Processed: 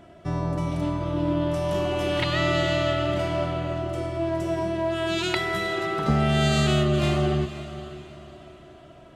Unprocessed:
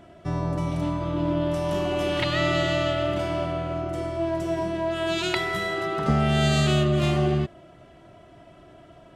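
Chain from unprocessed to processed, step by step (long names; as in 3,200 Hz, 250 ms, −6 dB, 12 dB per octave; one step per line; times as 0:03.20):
on a send: feedback delay with all-pass diffusion 503 ms, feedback 40%, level −13 dB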